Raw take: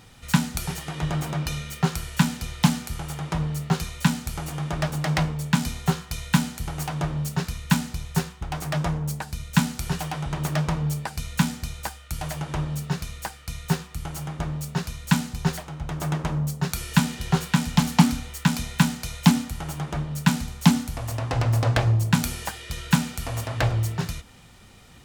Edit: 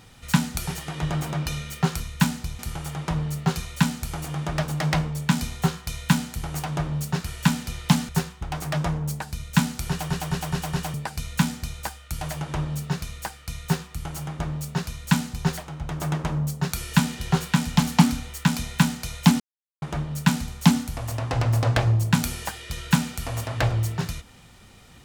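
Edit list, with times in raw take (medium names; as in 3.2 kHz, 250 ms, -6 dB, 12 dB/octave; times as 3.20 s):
2.00–2.83 s: swap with 7.50–8.09 s
9.89 s: stutter in place 0.21 s, 5 plays
19.40–19.82 s: mute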